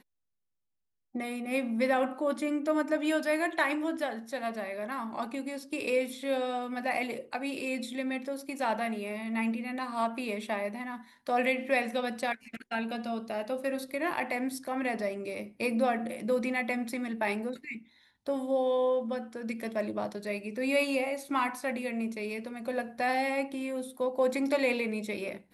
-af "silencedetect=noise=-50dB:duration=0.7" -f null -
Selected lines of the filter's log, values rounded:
silence_start: 0.00
silence_end: 1.15 | silence_duration: 1.15